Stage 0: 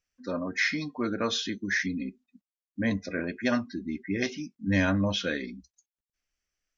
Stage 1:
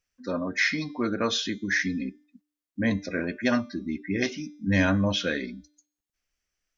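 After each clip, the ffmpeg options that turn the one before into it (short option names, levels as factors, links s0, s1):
-af "bandreject=f=296.8:t=h:w=4,bandreject=f=593.6:t=h:w=4,bandreject=f=890.4:t=h:w=4,bandreject=f=1187.2:t=h:w=4,bandreject=f=1484:t=h:w=4,bandreject=f=1780.8:t=h:w=4,bandreject=f=2077.6:t=h:w=4,bandreject=f=2374.4:t=h:w=4,bandreject=f=2671.2:t=h:w=4,bandreject=f=2968:t=h:w=4,bandreject=f=3264.8:t=h:w=4,bandreject=f=3561.6:t=h:w=4,bandreject=f=3858.4:t=h:w=4,bandreject=f=4155.2:t=h:w=4,bandreject=f=4452:t=h:w=4,bandreject=f=4748.8:t=h:w=4,bandreject=f=5045.6:t=h:w=4,bandreject=f=5342.4:t=h:w=4,bandreject=f=5639.2:t=h:w=4,bandreject=f=5936:t=h:w=4,bandreject=f=6232.8:t=h:w=4,bandreject=f=6529.6:t=h:w=4,bandreject=f=6826.4:t=h:w=4,bandreject=f=7123.2:t=h:w=4,bandreject=f=7420:t=h:w=4,bandreject=f=7716.8:t=h:w=4,bandreject=f=8013.6:t=h:w=4,bandreject=f=8310.4:t=h:w=4,bandreject=f=8607.2:t=h:w=4,bandreject=f=8904:t=h:w=4,bandreject=f=9200.8:t=h:w=4,bandreject=f=9497.6:t=h:w=4,bandreject=f=9794.4:t=h:w=4,bandreject=f=10091.2:t=h:w=4,bandreject=f=10388:t=h:w=4,volume=1.33"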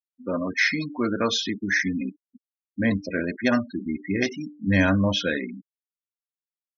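-af "afftfilt=real='re*gte(hypot(re,im),0.0251)':imag='im*gte(hypot(re,im),0.0251)':win_size=1024:overlap=0.75,aeval=exprs='0.299*(cos(1*acos(clip(val(0)/0.299,-1,1)))-cos(1*PI/2))+0.00531*(cos(3*acos(clip(val(0)/0.299,-1,1)))-cos(3*PI/2))':c=same,volume=1.41"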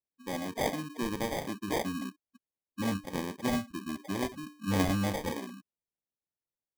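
-af "acrusher=samples=32:mix=1:aa=0.000001,volume=0.376"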